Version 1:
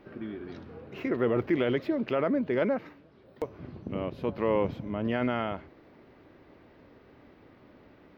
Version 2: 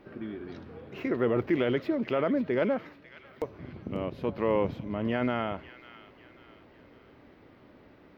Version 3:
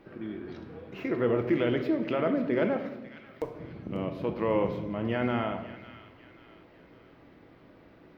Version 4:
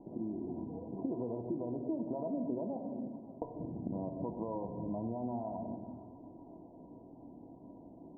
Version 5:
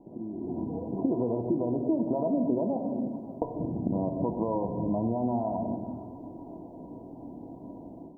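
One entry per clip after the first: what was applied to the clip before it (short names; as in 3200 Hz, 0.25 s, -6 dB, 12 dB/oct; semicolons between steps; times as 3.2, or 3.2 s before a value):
thin delay 0.545 s, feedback 43%, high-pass 1800 Hz, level -11 dB
shoebox room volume 530 m³, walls mixed, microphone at 0.68 m; gain -1 dB
dynamic EQ 260 Hz, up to -6 dB, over -39 dBFS, Q 0.76; compressor 6:1, threshold -35 dBFS, peak gain reduction 10.5 dB; rippled Chebyshev low-pass 1000 Hz, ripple 9 dB; gain +6 dB
AGC gain up to 9.5 dB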